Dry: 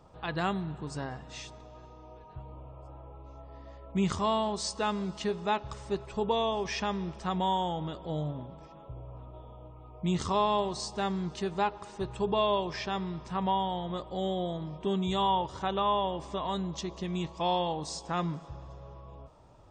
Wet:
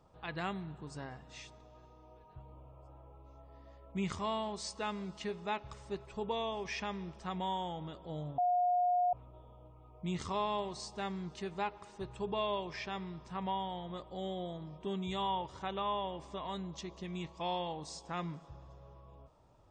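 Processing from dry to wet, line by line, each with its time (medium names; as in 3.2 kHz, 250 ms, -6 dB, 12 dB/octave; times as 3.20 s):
8.38–9.13 s: bleep 716 Hz -19 dBFS
whole clip: dynamic bell 2.2 kHz, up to +7 dB, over -54 dBFS, Q 2.7; trim -8 dB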